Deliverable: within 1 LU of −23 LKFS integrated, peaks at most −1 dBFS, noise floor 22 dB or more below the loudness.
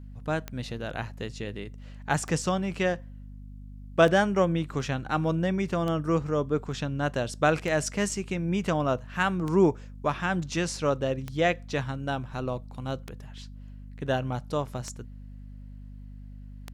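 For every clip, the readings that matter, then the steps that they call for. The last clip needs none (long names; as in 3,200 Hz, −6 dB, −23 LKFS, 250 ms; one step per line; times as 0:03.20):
number of clicks 10; mains hum 50 Hz; hum harmonics up to 250 Hz; level of the hum −41 dBFS; integrated loudness −28.5 LKFS; sample peak −7.5 dBFS; target loudness −23.0 LKFS
→ click removal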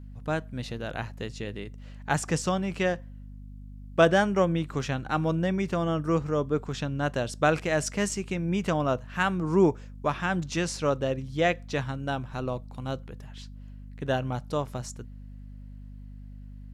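number of clicks 0; mains hum 50 Hz; hum harmonics up to 250 Hz; level of the hum −41 dBFS
→ hum removal 50 Hz, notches 5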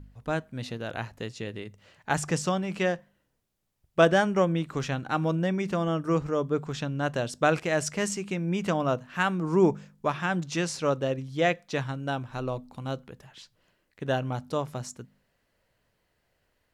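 mains hum none found; integrated loudness −28.5 LKFS; sample peak −7.0 dBFS; target loudness −23.0 LKFS
→ level +5.5 dB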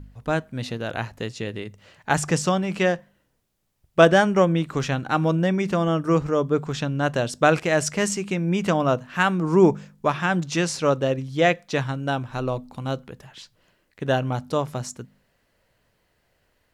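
integrated loudness −23.0 LKFS; sample peak −1.5 dBFS; background noise floor −69 dBFS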